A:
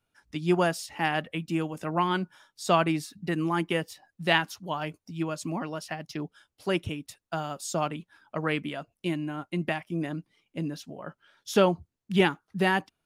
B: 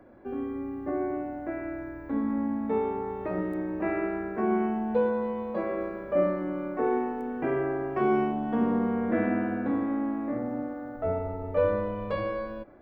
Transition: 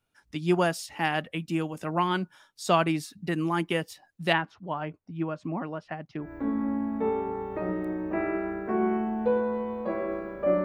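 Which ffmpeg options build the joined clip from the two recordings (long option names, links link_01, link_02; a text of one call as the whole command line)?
ffmpeg -i cue0.wav -i cue1.wav -filter_complex "[0:a]asplit=3[link_01][link_02][link_03];[link_01]afade=type=out:start_time=4.32:duration=0.02[link_04];[link_02]lowpass=1800,afade=type=in:start_time=4.32:duration=0.02,afade=type=out:start_time=6.33:duration=0.02[link_05];[link_03]afade=type=in:start_time=6.33:duration=0.02[link_06];[link_04][link_05][link_06]amix=inputs=3:normalize=0,apad=whole_dur=10.64,atrim=end=10.64,atrim=end=6.33,asetpts=PTS-STARTPTS[link_07];[1:a]atrim=start=1.86:end=6.33,asetpts=PTS-STARTPTS[link_08];[link_07][link_08]acrossfade=duration=0.16:curve1=tri:curve2=tri" out.wav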